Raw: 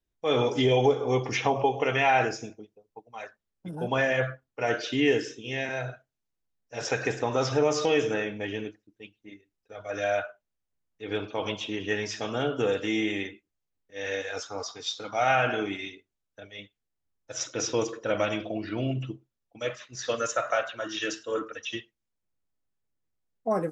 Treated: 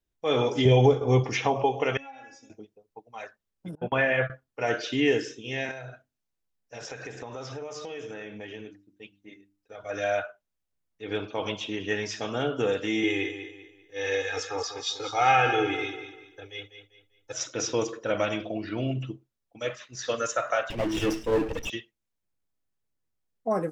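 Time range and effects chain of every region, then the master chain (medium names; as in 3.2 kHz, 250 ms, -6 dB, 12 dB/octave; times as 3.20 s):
0.65–1.24 s: expander -29 dBFS + peaking EQ 78 Hz +11.5 dB 2.7 oct
1.97–2.50 s: inharmonic resonator 270 Hz, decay 0.23 s, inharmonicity 0.002 + compression 3:1, threshold -45 dBFS
3.75–4.30 s: gate -31 dBFS, range -27 dB + resonant high shelf 3.9 kHz -14 dB, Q 1.5
5.71–9.84 s: hum notches 50/100/150/200/250/300/350 Hz + compression 4:1, threshold -37 dBFS
13.03–17.33 s: comb 2.4 ms, depth 94% + feedback delay 196 ms, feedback 34%, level -10 dB
20.70–21.70 s: comb filter that takes the minimum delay 0.36 ms + tilt shelf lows +7 dB, about 1.2 kHz + power-law waveshaper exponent 0.7
whole clip: none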